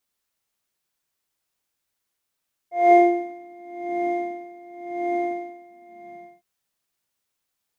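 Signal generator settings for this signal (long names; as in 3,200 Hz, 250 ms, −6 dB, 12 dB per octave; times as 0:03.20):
subtractive patch with tremolo F5, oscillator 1 triangle, oscillator 2 triangle, interval +19 semitones, detune 20 cents, oscillator 2 level −2 dB, sub −18 dB, noise −15 dB, filter bandpass, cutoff 190 Hz, Q 5.2, filter envelope 1.5 octaves, filter decay 0.57 s, attack 212 ms, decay 0.19 s, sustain −8.5 dB, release 1.00 s, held 2.71 s, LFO 0.92 Hz, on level 20 dB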